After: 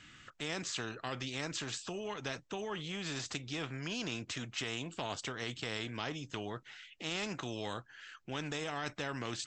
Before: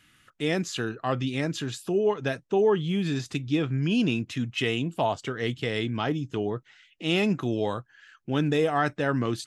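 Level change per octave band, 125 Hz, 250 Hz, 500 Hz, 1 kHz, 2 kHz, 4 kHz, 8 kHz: −14.5, −15.5, −16.0, −11.5, −8.0, −5.5, −0.5 decibels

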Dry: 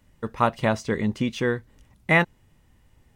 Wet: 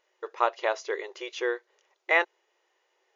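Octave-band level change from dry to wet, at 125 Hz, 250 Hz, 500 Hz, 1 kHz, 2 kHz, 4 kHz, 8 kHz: below −40 dB, −16.5 dB, −3.0 dB, −3.0 dB, −3.0 dB, −3.0 dB, −4.0 dB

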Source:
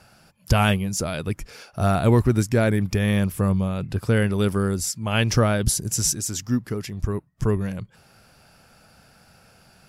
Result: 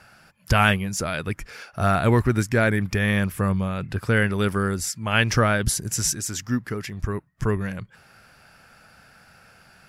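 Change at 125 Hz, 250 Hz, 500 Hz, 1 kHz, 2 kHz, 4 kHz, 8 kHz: −2.0, −2.0, −1.0, +2.5, +6.0, +0.5, −1.5 decibels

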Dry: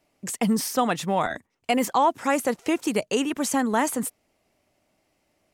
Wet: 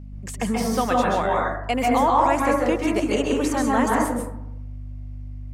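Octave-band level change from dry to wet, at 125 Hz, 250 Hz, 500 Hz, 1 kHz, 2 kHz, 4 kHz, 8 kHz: +6.5, +2.5, +4.0, +4.5, +3.0, −0.5, −3.5 decibels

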